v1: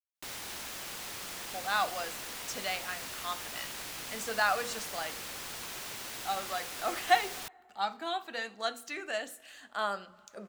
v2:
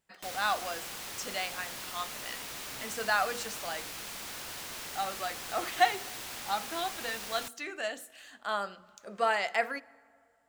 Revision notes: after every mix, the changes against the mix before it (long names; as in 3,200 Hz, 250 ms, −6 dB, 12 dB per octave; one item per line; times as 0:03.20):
speech: entry −1.30 s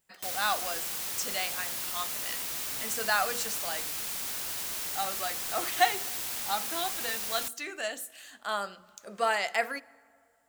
master: remove low-pass filter 3,700 Hz 6 dB per octave